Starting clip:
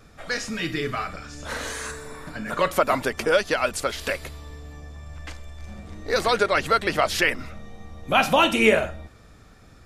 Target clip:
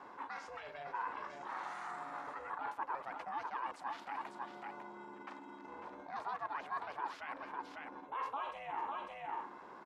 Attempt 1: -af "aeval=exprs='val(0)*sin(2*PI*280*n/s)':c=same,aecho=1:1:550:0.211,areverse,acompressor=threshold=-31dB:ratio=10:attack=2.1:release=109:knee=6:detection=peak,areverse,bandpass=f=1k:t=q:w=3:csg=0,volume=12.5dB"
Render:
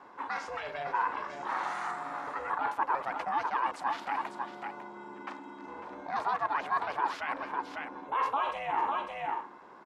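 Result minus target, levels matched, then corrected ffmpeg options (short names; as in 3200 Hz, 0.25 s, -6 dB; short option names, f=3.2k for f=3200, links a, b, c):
compressor: peak gain reduction -10.5 dB
-af "aeval=exprs='val(0)*sin(2*PI*280*n/s)':c=same,aecho=1:1:550:0.211,areverse,acompressor=threshold=-42.5dB:ratio=10:attack=2.1:release=109:knee=6:detection=peak,areverse,bandpass=f=1k:t=q:w=3:csg=0,volume=12.5dB"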